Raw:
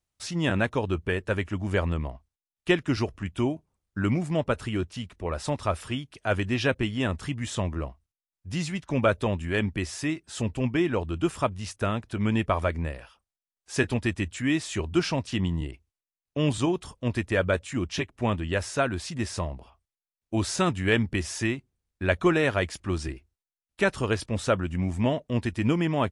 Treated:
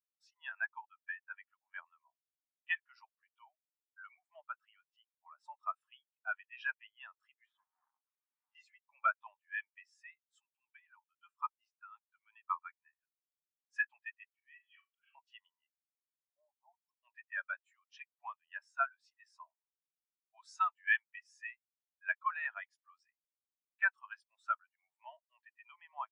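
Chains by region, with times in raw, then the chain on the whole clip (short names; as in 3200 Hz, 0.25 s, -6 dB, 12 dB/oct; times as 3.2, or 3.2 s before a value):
7.46–8.55 infinite clipping + HPF 320 Hz 6 dB/oct + tape spacing loss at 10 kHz 24 dB
10.19–13.74 tremolo 5.6 Hz, depth 57% + brick-wall FIR high-pass 790 Hz
14.26–15.15 auto swell 0.251 s + brick-wall FIR band-pass 1100–3400 Hz + flutter echo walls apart 6.9 m, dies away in 0.38 s
15.68–16.89 steep low-pass 830 Hz + low shelf 420 Hz -4 dB
whole clip: steep high-pass 800 Hz 36 dB/oct; spectral expander 2.5:1; gain -8 dB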